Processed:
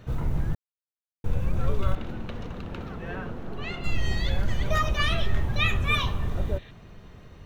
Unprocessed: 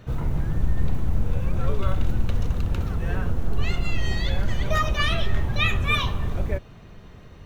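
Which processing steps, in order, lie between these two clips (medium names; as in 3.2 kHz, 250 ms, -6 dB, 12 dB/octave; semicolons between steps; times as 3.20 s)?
0.55–1.24 s: mute; 1.95–3.84 s: three-band isolator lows -14 dB, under 160 Hz, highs -14 dB, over 4.5 kHz; 6.36–6.68 s: spectral replace 1.6–4.2 kHz before; trim -2 dB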